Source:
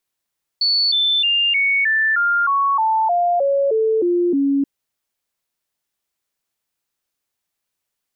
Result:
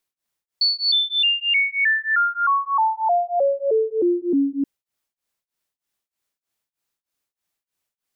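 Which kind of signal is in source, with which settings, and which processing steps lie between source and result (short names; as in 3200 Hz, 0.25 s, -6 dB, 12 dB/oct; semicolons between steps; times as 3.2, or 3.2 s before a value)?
stepped sine 4450 Hz down, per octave 3, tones 13, 0.31 s, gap 0.00 s -14 dBFS
beating tremolo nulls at 3.2 Hz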